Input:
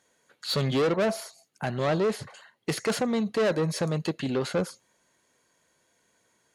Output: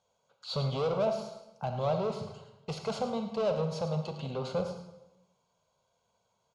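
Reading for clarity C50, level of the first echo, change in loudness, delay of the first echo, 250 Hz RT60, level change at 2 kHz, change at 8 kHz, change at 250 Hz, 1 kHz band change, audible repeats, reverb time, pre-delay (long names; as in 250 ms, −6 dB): 6.5 dB, −12.5 dB, −5.0 dB, 107 ms, 1.1 s, −14.5 dB, −13.5 dB, −8.5 dB, −2.5 dB, 1, 1.0 s, 32 ms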